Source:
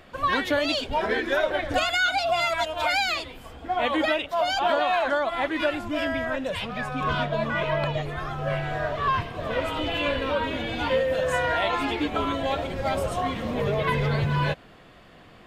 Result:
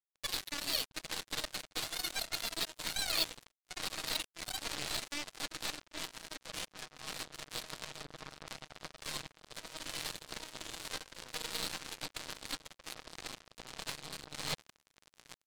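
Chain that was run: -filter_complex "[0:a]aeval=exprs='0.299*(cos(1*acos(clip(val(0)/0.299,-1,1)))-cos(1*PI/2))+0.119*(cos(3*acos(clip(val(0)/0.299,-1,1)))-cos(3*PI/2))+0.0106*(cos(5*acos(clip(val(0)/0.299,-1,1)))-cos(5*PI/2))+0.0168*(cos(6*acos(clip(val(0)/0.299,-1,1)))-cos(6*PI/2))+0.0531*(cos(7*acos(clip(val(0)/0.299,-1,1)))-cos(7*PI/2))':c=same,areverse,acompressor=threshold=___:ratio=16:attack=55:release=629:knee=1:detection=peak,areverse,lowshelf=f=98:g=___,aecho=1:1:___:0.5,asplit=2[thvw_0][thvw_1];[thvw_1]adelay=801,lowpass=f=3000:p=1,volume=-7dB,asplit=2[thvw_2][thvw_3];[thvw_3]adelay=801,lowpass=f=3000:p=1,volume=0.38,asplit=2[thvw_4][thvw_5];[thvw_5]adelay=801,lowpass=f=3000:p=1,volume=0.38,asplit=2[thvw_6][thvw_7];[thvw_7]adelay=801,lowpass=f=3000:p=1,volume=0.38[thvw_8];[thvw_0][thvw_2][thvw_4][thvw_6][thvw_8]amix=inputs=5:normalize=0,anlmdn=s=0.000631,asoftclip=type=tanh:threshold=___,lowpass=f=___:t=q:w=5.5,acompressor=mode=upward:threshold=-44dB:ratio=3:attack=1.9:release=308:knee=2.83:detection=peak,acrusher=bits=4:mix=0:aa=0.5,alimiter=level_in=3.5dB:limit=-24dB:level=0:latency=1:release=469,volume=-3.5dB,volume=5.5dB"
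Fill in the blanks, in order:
-41dB, 3.5, 6.4, -28dB, 4300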